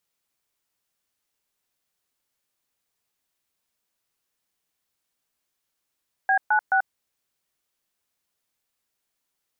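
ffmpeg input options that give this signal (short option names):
-f lavfi -i "aevalsrc='0.106*clip(min(mod(t,0.214),0.087-mod(t,0.214))/0.002,0,1)*(eq(floor(t/0.214),0)*(sin(2*PI*770*mod(t,0.214))+sin(2*PI*1633*mod(t,0.214)))+eq(floor(t/0.214),1)*(sin(2*PI*852*mod(t,0.214))+sin(2*PI*1477*mod(t,0.214)))+eq(floor(t/0.214),2)*(sin(2*PI*770*mod(t,0.214))+sin(2*PI*1477*mod(t,0.214))))':d=0.642:s=44100"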